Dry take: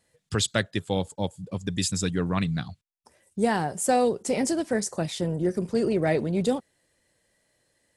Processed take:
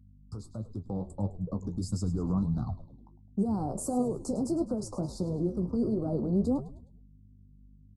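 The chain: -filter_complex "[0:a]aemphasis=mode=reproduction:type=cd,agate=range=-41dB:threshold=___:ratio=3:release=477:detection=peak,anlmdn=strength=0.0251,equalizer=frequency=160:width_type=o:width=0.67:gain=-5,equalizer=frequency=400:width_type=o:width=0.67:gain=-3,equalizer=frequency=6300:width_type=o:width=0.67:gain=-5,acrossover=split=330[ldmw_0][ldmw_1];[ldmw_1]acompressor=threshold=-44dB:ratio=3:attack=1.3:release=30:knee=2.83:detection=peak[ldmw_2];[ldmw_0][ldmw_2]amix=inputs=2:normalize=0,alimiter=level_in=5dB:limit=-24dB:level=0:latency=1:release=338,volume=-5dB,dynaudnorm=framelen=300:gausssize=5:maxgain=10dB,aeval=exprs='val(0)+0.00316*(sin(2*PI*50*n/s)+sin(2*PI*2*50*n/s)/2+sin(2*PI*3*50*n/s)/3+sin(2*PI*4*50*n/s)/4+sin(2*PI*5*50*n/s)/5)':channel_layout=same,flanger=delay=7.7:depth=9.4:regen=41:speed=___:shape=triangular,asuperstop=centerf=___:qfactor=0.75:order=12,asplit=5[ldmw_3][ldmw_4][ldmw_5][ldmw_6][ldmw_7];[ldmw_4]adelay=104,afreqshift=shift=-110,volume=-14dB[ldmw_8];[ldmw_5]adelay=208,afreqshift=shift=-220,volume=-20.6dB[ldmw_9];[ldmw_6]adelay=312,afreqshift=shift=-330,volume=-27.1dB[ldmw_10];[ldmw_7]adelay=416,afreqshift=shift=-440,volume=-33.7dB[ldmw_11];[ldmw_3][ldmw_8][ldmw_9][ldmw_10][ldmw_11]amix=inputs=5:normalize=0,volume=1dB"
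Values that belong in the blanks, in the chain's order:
-51dB, 1.5, 2400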